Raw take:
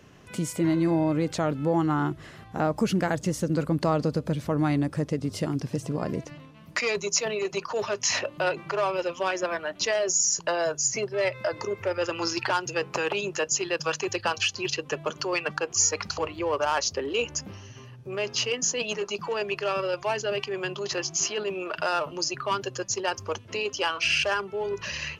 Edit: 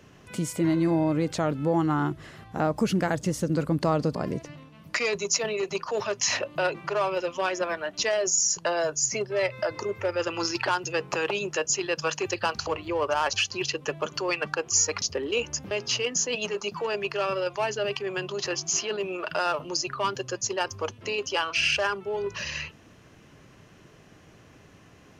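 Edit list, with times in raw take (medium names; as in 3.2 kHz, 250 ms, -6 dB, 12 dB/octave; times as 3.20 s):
4.15–5.97 s: delete
16.06–16.84 s: move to 14.37 s
17.53–18.18 s: delete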